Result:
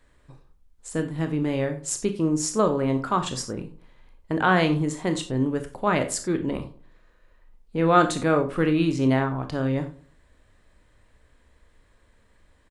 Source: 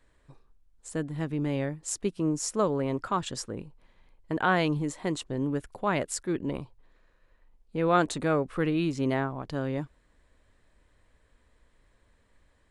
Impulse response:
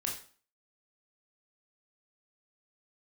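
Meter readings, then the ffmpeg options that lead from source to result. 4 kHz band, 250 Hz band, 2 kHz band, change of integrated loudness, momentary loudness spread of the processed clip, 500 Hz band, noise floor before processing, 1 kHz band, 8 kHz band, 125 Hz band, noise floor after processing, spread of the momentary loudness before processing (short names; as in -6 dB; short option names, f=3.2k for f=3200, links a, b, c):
+5.0 dB, +5.5 dB, +5.0 dB, +5.5 dB, 11 LU, +5.0 dB, -67 dBFS, +5.5 dB, +5.0 dB, +5.5 dB, -61 dBFS, 11 LU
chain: -filter_complex "[0:a]asplit=2[a][b];[b]adelay=104,lowpass=f=1.2k:p=1,volume=-17dB,asplit=2[c][d];[d]adelay=104,lowpass=f=1.2k:p=1,volume=0.33,asplit=2[e][f];[f]adelay=104,lowpass=f=1.2k:p=1,volume=0.33[g];[a][c][e][g]amix=inputs=4:normalize=0,asplit=2[h][i];[1:a]atrim=start_sample=2205,atrim=end_sample=4410[j];[i][j]afir=irnorm=-1:irlink=0,volume=-2.5dB[k];[h][k]amix=inputs=2:normalize=0"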